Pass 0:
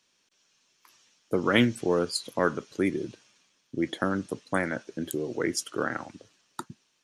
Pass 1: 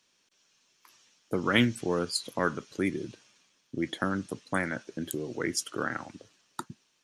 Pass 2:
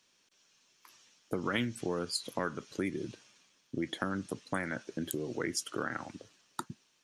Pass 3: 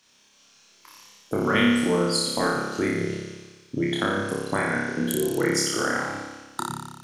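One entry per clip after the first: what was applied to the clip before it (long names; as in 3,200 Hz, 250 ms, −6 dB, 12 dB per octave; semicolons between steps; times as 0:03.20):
dynamic equaliser 500 Hz, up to −5 dB, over −38 dBFS, Q 0.75
downward compressor 3 to 1, threshold −31 dBFS, peak gain reduction 10 dB
flutter between parallel walls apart 5 metres, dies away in 1.2 s; level +6.5 dB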